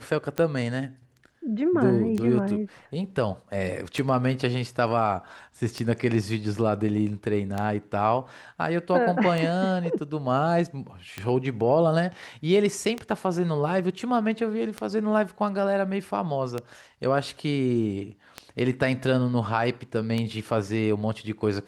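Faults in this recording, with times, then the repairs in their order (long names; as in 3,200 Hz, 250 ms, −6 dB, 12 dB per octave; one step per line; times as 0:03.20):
scratch tick 33 1/3 rpm −15 dBFS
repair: click removal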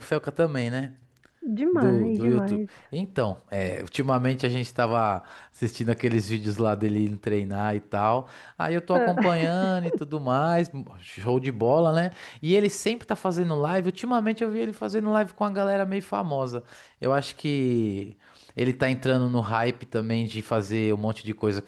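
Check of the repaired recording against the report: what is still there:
none of them is left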